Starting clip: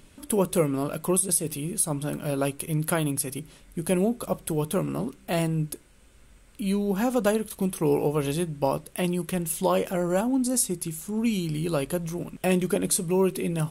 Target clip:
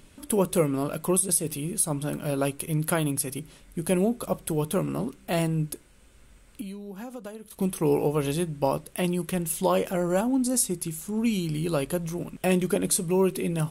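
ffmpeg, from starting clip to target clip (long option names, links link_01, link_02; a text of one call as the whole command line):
ffmpeg -i in.wav -filter_complex "[0:a]asettb=1/sr,asplit=3[link_01][link_02][link_03];[link_01]atrim=end=6.614[link_04];[link_02]atrim=start=6.61:end=7.59,asetpts=PTS-STARTPTS,afade=type=in:duration=0.004:curve=qsin,afade=type=out:start_time=0.976:duration=0.004:curve=qsin,acompressor=threshold=-36dB:ratio=10[link_05];[link_03]atrim=start=7.586[link_06];[link_04][link_05]acrossfade=duration=0.004:curve1=hsin:curve2=qsin[link_07];[link_07][link_06]acrossfade=duration=0.004:curve1=qsin:curve2=hsin" out.wav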